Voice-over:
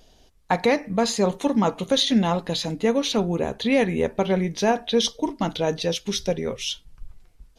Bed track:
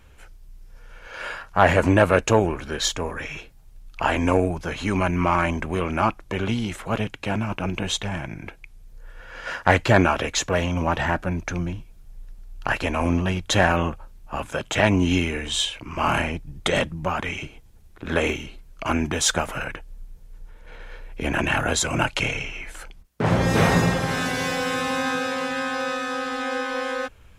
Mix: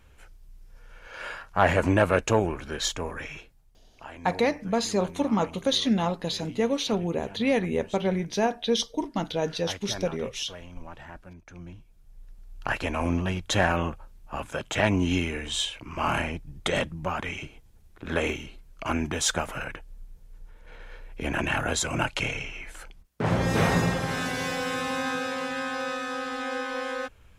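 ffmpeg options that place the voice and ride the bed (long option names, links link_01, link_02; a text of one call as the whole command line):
ffmpeg -i stem1.wav -i stem2.wav -filter_complex "[0:a]adelay=3750,volume=-4dB[link_01];[1:a]volume=12dB,afade=type=out:start_time=3.21:duration=0.68:silence=0.149624,afade=type=in:start_time=11.47:duration=1.07:silence=0.149624[link_02];[link_01][link_02]amix=inputs=2:normalize=0" out.wav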